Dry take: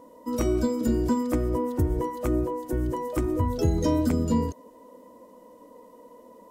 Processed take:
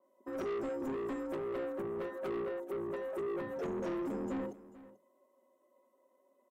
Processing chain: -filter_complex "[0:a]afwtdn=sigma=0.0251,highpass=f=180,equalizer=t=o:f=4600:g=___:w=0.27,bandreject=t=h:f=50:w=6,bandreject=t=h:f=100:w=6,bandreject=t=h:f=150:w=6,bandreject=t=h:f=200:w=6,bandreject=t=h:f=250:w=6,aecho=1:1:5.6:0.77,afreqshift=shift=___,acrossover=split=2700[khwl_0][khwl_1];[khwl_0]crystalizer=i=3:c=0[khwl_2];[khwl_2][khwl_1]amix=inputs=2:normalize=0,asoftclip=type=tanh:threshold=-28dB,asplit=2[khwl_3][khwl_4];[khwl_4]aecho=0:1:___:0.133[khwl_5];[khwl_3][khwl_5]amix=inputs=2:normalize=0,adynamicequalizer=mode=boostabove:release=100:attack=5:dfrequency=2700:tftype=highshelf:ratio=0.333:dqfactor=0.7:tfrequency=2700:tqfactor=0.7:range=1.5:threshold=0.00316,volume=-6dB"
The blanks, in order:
-12.5, 38, 439